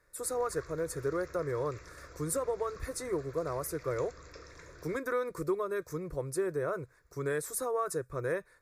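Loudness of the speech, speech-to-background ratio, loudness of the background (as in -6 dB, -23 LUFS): -35.0 LUFS, 17.0 dB, -52.0 LUFS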